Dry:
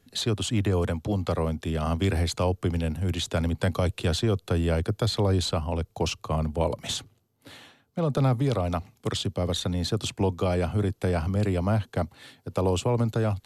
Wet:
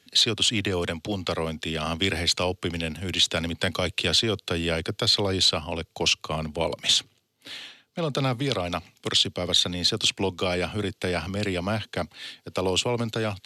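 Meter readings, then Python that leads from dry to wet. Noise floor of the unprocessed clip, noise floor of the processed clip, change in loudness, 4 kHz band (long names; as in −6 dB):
−66 dBFS, −67 dBFS, +2.0 dB, +11.0 dB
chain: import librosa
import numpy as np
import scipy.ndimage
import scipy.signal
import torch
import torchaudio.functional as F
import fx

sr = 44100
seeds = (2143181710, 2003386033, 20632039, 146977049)

y = fx.weighting(x, sr, curve='D')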